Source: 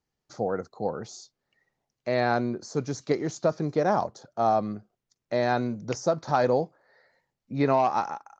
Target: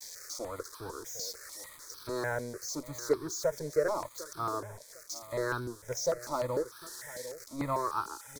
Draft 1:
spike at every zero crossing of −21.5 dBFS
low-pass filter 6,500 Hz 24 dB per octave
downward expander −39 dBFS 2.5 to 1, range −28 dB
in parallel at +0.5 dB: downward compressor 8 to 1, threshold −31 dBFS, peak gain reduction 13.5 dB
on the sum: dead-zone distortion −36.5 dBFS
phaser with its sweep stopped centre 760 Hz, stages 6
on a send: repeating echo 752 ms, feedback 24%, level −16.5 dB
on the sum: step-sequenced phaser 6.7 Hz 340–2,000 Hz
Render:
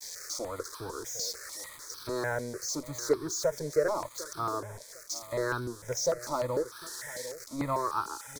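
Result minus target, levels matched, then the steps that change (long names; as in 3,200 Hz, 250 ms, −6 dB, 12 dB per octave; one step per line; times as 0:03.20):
downward compressor: peak gain reduction −9 dB
change: downward compressor 8 to 1, threshold −41.5 dBFS, peak gain reduction 23 dB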